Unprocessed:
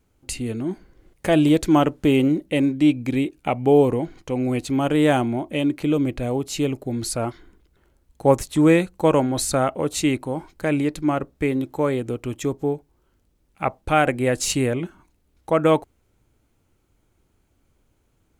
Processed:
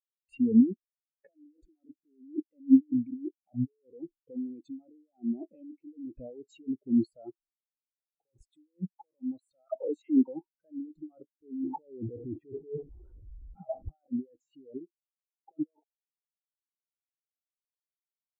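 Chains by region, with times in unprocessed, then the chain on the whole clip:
9.68–10.28 s: resonant low shelf 160 Hz -8 dB, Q 1.5 + compression, threshold -23 dBFS + phase dispersion lows, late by 75 ms, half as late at 680 Hz
11.44–13.98 s: jump at every zero crossing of -25.5 dBFS + tape spacing loss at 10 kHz 38 dB
14.77–15.53 s: tilt EQ -3 dB/octave + compression 4:1, threshold -27 dBFS + band-pass filter 670 Hz, Q 0.72
whole clip: bass shelf 230 Hz -9.5 dB; compressor with a negative ratio -32 dBFS, ratio -1; spectral contrast expander 4:1

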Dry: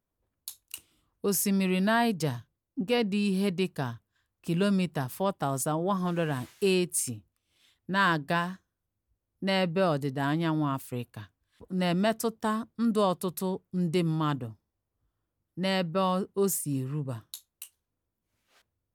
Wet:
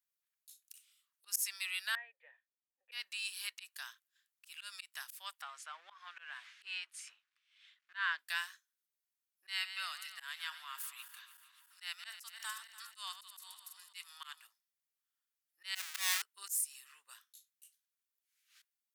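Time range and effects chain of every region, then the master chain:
1.95–2.92 s: cascade formant filter e + high-order bell 640 Hz +11.5 dB 1.2 oct
5.42–8.19 s: companding laws mixed up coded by mu + low-pass 2.5 kHz
9.49–14.47 s: backward echo that repeats 145 ms, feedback 71%, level -13.5 dB + high-pass 720 Hz 24 dB/octave
15.75–16.22 s: square wave that keeps the level + high-pass 220 Hz 24 dB/octave + bass shelf 290 Hz +11 dB
whole clip: high-pass 1.5 kHz 24 dB/octave; treble shelf 3.3 kHz +7 dB; slow attack 142 ms; trim -4.5 dB

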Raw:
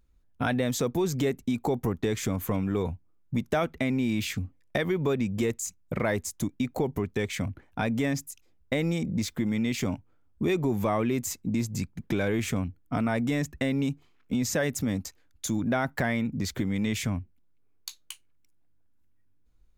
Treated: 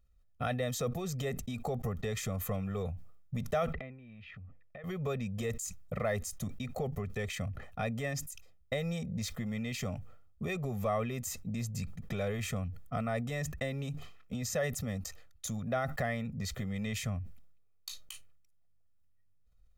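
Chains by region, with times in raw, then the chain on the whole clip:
3.73–4.84 s: low-pass 2.7 kHz 24 dB/octave + compression, threshold -40 dBFS
whole clip: comb 1.6 ms, depth 94%; decay stretcher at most 62 dB/s; trim -9 dB

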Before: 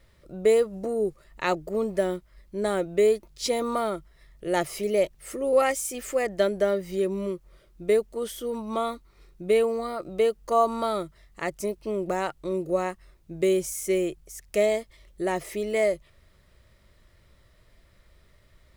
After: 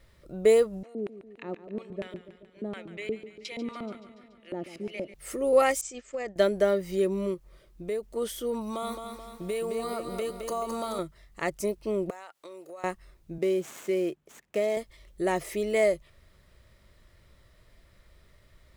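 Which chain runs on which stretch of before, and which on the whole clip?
0.83–5.14 s: LFO band-pass square 4.2 Hz 250–2500 Hz + modulated delay 143 ms, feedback 64%, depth 62 cents, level -13 dB
5.81–6.36 s: expander -29 dBFS + steep low-pass 8 kHz 72 dB/octave + compression 5:1, threshold -30 dBFS
7.34–8.03 s: band-stop 1.4 kHz, Q 19 + compression 2:1, threshold -36 dBFS
8.61–10.99 s: treble shelf 4.8 kHz +11 dB + compression 4:1, threshold -30 dBFS + bit-crushed delay 215 ms, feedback 55%, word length 10-bit, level -6 dB
12.10–12.84 s: high-pass 700 Hz + compression 8:1, threshold -40 dBFS
13.38–14.77 s: median filter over 9 samples + Chebyshev high-pass 210 Hz + compression 2.5:1, threshold -24 dBFS
whole clip: none

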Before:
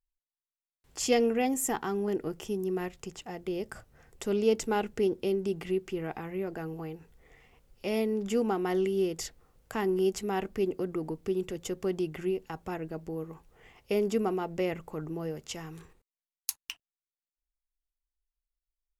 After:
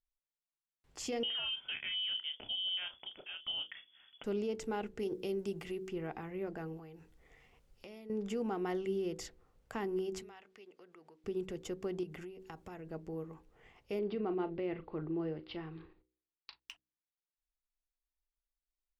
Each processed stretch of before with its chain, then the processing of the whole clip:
1.23–4.24 s: doubling 32 ms -10.5 dB + frequency inversion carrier 3.4 kHz
4.99–5.89 s: treble shelf 5 kHz +10 dB + hum notches 60/120/180/240/300/360/420/480/540/600 Hz
6.77–8.10 s: peaking EQ 13 kHz +6 dB 2.6 oct + compression, threshold -43 dBFS
10.22–11.24 s: band-pass filter 3.4 kHz, Q 0.55 + compression 2:1, threshold -53 dBFS
12.03–12.87 s: treble shelf 4.7 kHz +6 dB + compression 12:1, threshold -37 dBFS
13.99–16.60 s: steep low-pass 4.6 kHz 72 dB/octave + peaking EQ 340 Hz +9 dB 0.25 oct + doubling 38 ms -13.5 dB
whole clip: peak limiter -23.5 dBFS; treble shelf 7.7 kHz -11.5 dB; de-hum 62.81 Hz, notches 8; trim -5 dB

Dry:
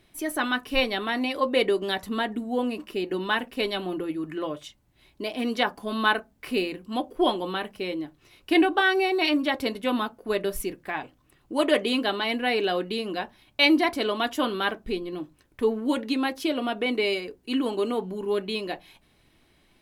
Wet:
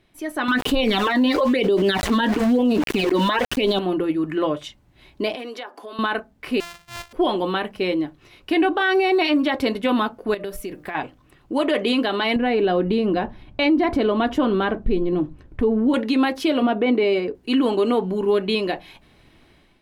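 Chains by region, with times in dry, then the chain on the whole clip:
0.48–3.79 s: phase shifter stages 12, 1 Hz, lowest notch 120–2000 Hz + small samples zeroed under -44.5 dBFS + level flattener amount 70%
5.35–5.99 s: steep high-pass 290 Hz + compression 5:1, threshold -39 dBFS
6.60–7.13 s: sorted samples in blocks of 128 samples + overload inside the chain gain 23.5 dB + amplifier tone stack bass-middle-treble 10-0-10
10.34–10.95 s: treble shelf 10 kHz +9.5 dB + de-hum 150.9 Hz, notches 9 + compression 8:1, threshold -35 dBFS
12.36–15.94 s: tilt EQ -3 dB/octave + compression 2.5:1, threshold -27 dBFS
16.62–17.35 s: high-pass 310 Hz 6 dB/octave + tilt EQ -3.5 dB/octave
whole clip: treble shelf 6 kHz -10.5 dB; level rider gain up to 9.5 dB; peak limiter -11.5 dBFS

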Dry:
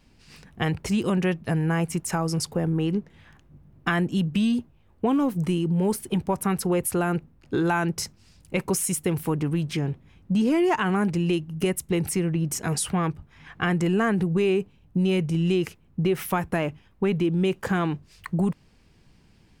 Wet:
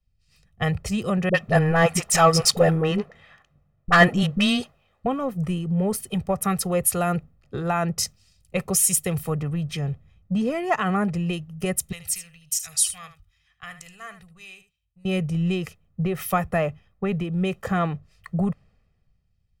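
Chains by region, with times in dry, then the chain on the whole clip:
1.29–5.06 s: overdrive pedal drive 18 dB, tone 3.5 kHz, clips at -9 dBFS + phase dispersion highs, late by 53 ms, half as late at 390 Hz
11.92–15.05 s: amplifier tone stack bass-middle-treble 10-0-10 + delay 76 ms -10.5 dB
whole clip: comb 1.6 ms, depth 69%; three bands expanded up and down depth 70%

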